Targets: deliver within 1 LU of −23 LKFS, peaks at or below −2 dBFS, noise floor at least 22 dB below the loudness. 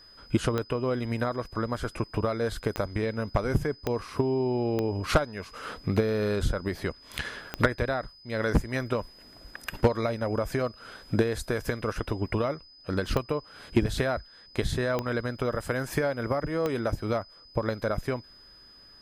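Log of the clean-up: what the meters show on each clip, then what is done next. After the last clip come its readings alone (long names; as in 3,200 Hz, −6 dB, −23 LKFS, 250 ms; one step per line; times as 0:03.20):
number of clicks 8; interfering tone 5,000 Hz; level of the tone −51 dBFS; integrated loudness −29.5 LKFS; sample peak −9.5 dBFS; target loudness −23.0 LKFS
→ click removal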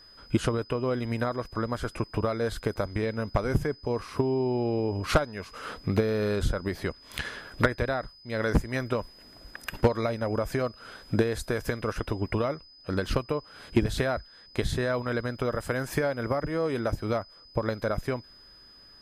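number of clicks 0; interfering tone 5,000 Hz; level of the tone −51 dBFS
→ notch filter 5,000 Hz, Q 30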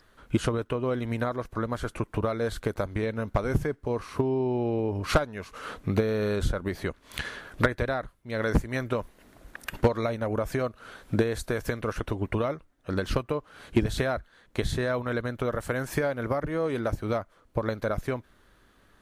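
interfering tone none found; integrated loudness −30.0 LKFS; sample peak −9.5 dBFS; target loudness −23.0 LKFS
→ level +7 dB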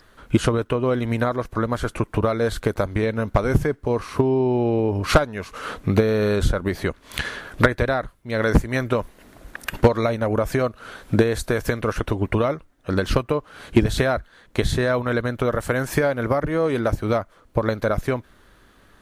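integrated loudness −22.5 LKFS; sample peak −2.5 dBFS; background noise floor −55 dBFS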